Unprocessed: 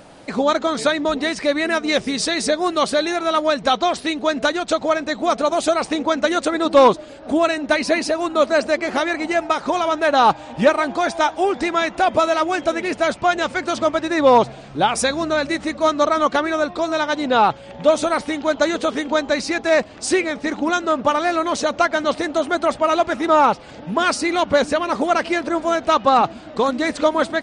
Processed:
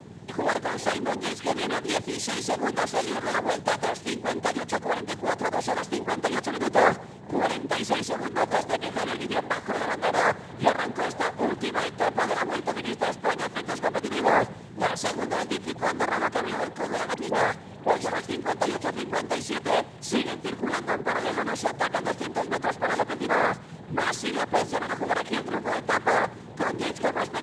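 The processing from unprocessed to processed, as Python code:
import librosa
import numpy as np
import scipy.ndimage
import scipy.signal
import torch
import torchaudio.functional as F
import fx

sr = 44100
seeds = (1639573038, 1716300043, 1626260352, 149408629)

p1 = fx.add_hum(x, sr, base_hz=60, snr_db=12)
p2 = fx.noise_vocoder(p1, sr, seeds[0], bands=6)
p3 = fx.dispersion(p2, sr, late='highs', ms=43.0, hz=2100.0, at=(17.14, 18.27))
p4 = p3 + fx.echo_feedback(p3, sr, ms=80, feedback_pct=51, wet_db=-24, dry=0)
y = p4 * 10.0 ** (-8.0 / 20.0)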